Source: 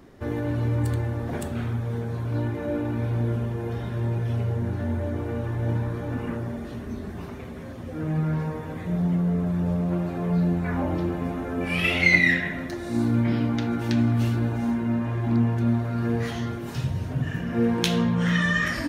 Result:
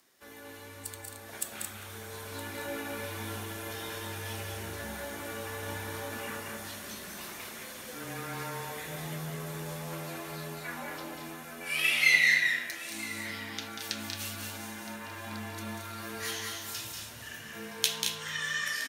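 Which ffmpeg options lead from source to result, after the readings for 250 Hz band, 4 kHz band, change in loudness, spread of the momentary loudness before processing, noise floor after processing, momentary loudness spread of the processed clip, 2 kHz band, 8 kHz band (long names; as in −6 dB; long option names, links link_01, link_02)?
−19.5 dB, +1.0 dB, −8.0 dB, 9 LU, −47 dBFS, 13 LU, −3.0 dB, can't be measured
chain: -filter_complex "[0:a]dynaudnorm=framelen=540:gausssize=7:maxgain=11.5dB,aderivative,asplit=2[link_01][link_02];[link_02]aecho=0:1:189.5|221.6:0.501|0.501[link_03];[link_01][link_03]amix=inputs=2:normalize=0,afreqshift=-19,asplit=2[link_04][link_05];[link_05]aecho=0:1:967:0.126[link_06];[link_04][link_06]amix=inputs=2:normalize=0,volume=2.5dB"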